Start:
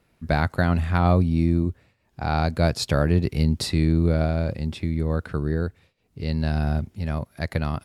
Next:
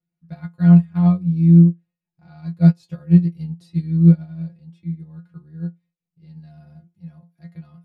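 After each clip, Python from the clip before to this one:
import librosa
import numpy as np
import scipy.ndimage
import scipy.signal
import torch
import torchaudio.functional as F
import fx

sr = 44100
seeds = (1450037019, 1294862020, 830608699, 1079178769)

y = fx.peak_eq(x, sr, hz=170.0, db=14.5, octaves=0.57)
y = fx.stiff_resonator(y, sr, f0_hz=170.0, decay_s=0.22, stiffness=0.002)
y = fx.upward_expand(y, sr, threshold_db=-24.0, expansion=2.5)
y = F.gain(torch.from_numpy(y), 4.5).numpy()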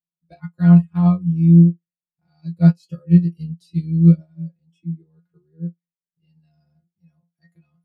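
y = fx.noise_reduce_blind(x, sr, reduce_db=18)
y = fx.dynamic_eq(y, sr, hz=1100.0, q=1.6, threshold_db=-40.0, ratio=4.0, max_db=4)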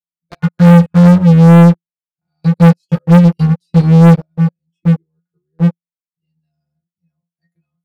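y = fx.leveller(x, sr, passes=5)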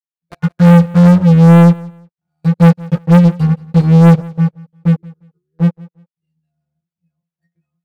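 y = scipy.ndimage.median_filter(x, 9, mode='constant')
y = fx.echo_feedback(y, sr, ms=176, feedback_pct=23, wet_db=-22.0)
y = F.gain(torch.from_numpy(y), -1.0).numpy()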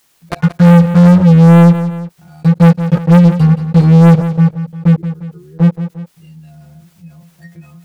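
y = fx.env_flatten(x, sr, amount_pct=50)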